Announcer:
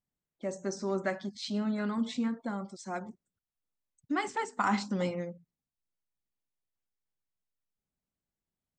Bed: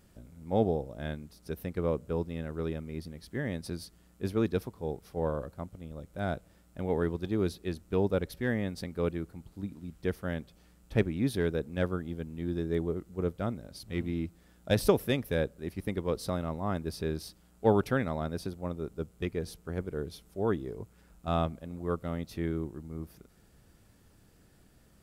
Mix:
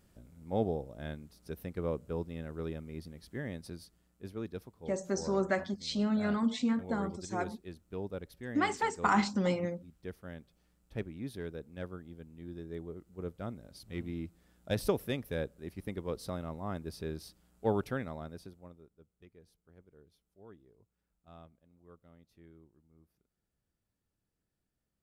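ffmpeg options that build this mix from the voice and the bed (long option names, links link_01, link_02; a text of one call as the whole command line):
ffmpeg -i stem1.wav -i stem2.wav -filter_complex "[0:a]adelay=4450,volume=1.5dB[link_01];[1:a]volume=1dB,afade=type=out:start_time=3.28:duration=0.86:silence=0.446684,afade=type=in:start_time=12.91:duration=0.8:silence=0.530884,afade=type=out:start_time=17.81:duration=1.09:silence=0.112202[link_02];[link_01][link_02]amix=inputs=2:normalize=0" out.wav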